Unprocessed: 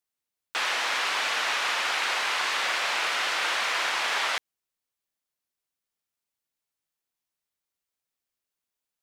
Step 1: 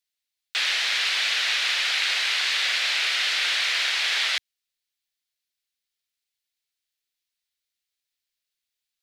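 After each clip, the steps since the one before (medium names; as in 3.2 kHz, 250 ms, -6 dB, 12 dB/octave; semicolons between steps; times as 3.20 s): graphic EQ 125/250/500/1000/2000/4000 Hz -9/-8/-4/-11/+4/+8 dB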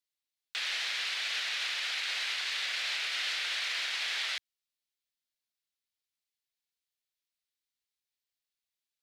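peak limiter -17.5 dBFS, peak gain reduction 5 dB; trim -7 dB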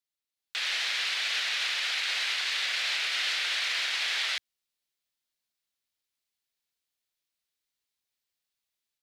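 level rider gain up to 6 dB; trim -2 dB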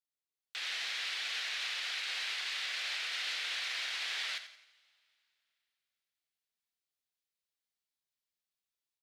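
on a send: feedback delay 87 ms, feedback 37%, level -12.5 dB; on the sum: two-slope reverb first 0.74 s, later 3 s, from -18 dB, DRR 12 dB; trim -8 dB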